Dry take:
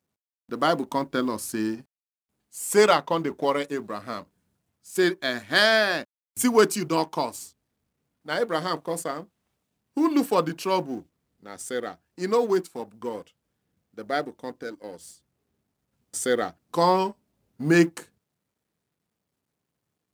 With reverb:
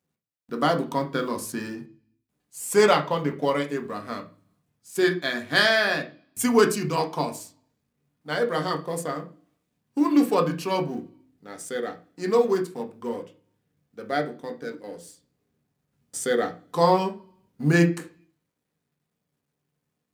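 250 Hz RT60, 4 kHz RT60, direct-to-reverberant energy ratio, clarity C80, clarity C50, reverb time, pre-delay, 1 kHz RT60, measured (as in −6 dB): 0.65 s, 0.60 s, 3.0 dB, 19.5 dB, 13.0 dB, 0.40 s, 3 ms, 0.40 s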